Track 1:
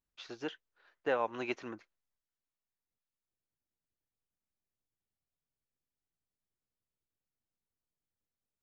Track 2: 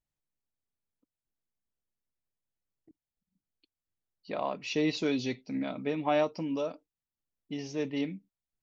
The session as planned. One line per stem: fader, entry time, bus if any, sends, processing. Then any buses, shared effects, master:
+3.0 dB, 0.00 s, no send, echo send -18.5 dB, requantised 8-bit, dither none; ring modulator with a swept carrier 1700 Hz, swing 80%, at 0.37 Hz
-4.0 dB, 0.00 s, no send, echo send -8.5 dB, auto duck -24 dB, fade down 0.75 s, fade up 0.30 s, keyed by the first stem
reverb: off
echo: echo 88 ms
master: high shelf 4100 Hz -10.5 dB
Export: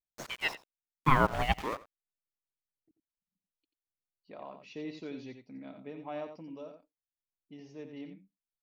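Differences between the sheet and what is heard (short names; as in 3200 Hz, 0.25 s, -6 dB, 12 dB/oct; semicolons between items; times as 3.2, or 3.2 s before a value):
stem 1 +3.0 dB -> +11.5 dB; stem 2 -4.0 dB -> -12.5 dB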